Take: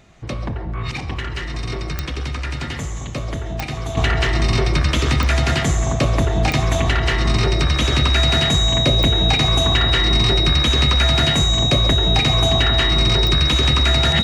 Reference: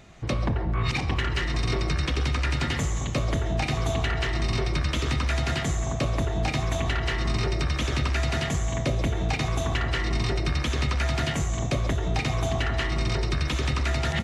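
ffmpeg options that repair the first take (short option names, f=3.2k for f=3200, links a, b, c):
-af "adeclick=t=4,bandreject=f=3.8k:w=30,asetnsamples=n=441:p=0,asendcmd='3.97 volume volume -8.5dB',volume=0dB"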